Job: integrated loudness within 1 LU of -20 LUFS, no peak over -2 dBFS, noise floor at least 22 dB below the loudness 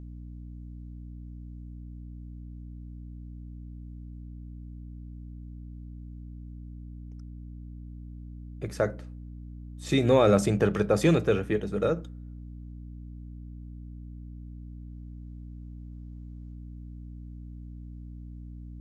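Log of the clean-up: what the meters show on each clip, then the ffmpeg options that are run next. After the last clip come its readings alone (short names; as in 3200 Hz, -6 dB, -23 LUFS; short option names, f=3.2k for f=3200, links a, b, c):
hum 60 Hz; harmonics up to 300 Hz; hum level -39 dBFS; loudness -25.5 LUFS; peak -9.0 dBFS; loudness target -20.0 LUFS
-> -af "bandreject=f=60:t=h:w=4,bandreject=f=120:t=h:w=4,bandreject=f=180:t=h:w=4,bandreject=f=240:t=h:w=4,bandreject=f=300:t=h:w=4"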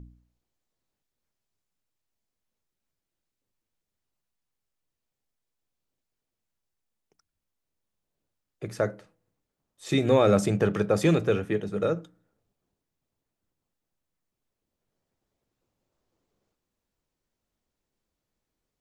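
hum none; loudness -25.0 LUFS; peak -9.0 dBFS; loudness target -20.0 LUFS
-> -af "volume=5dB"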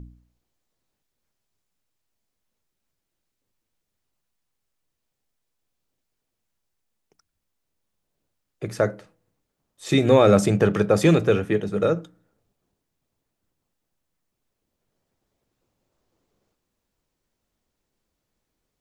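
loudness -20.0 LUFS; peak -4.0 dBFS; noise floor -80 dBFS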